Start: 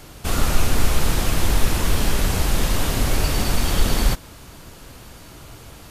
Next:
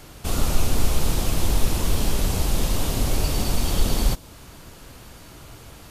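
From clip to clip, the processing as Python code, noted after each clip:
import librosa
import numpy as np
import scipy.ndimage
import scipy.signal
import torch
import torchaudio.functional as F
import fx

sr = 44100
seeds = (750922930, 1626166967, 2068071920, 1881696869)

y = fx.dynamic_eq(x, sr, hz=1700.0, q=1.2, threshold_db=-45.0, ratio=4.0, max_db=-7)
y = y * librosa.db_to_amplitude(-2.0)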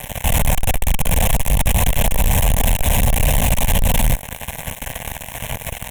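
y = fx.fuzz(x, sr, gain_db=42.0, gate_db=-39.0)
y = fx.fixed_phaser(y, sr, hz=1300.0, stages=6)
y = 10.0 ** (-10.5 / 20.0) * np.tanh(y / 10.0 ** (-10.5 / 20.0))
y = y * librosa.db_to_amplitude(3.5)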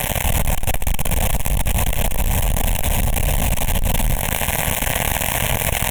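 y = fx.rider(x, sr, range_db=4, speed_s=0.5)
y = fx.echo_feedback(y, sr, ms=136, feedback_pct=51, wet_db=-23)
y = fx.env_flatten(y, sr, amount_pct=70)
y = y * librosa.db_to_amplitude(-4.5)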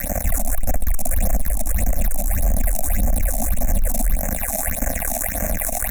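y = fx.fixed_phaser(x, sr, hz=630.0, stages=8)
y = fx.phaser_stages(y, sr, stages=6, low_hz=100.0, high_hz=4000.0, hz=1.7, feedback_pct=50)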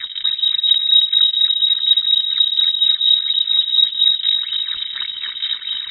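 y = x * (1.0 - 0.67 / 2.0 + 0.67 / 2.0 * np.cos(2.0 * np.pi * 4.2 * (np.arange(len(x)) / sr)))
y = fx.echo_feedback(y, sr, ms=273, feedback_pct=52, wet_db=-6.0)
y = fx.freq_invert(y, sr, carrier_hz=3800)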